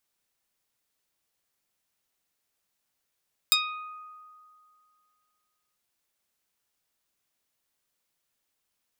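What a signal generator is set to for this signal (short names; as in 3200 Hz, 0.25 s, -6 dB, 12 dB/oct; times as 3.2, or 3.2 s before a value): plucked string D#6, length 2.24 s, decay 2.37 s, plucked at 0.1, medium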